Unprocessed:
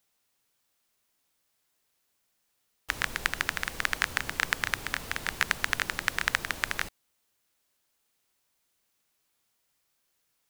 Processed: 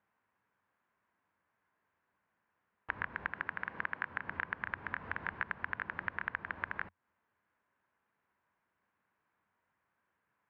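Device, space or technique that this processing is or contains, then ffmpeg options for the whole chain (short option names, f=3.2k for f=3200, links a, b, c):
bass amplifier: -filter_complex "[0:a]acompressor=threshold=-36dB:ratio=4,highpass=70,equalizer=f=88:t=q:w=4:g=6,equalizer=f=200:t=q:w=4:g=5,equalizer=f=1k:t=q:w=4:g=8,equalizer=f=1.6k:t=q:w=4:g=6,lowpass=f=2.1k:w=0.5412,lowpass=f=2.1k:w=1.3066,asettb=1/sr,asplit=3[a][b][c];[a]atrim=end=3.324[d];[b]atrim=start=3.32:end=4.28,asetpts=PTS-STARTPTS,afade=t=in:d=0.004:c=qsin,afade=t=out:st=0.956:d=0.004:c=qsin,highpass=110[e];[c]atrim=start=4.276[f];[d][e]acrossfade=d=0.004:c1=hsin:c2=qsin[g];[g][f]acrossfade=d=0.004:c1=qsin:c2=hsin"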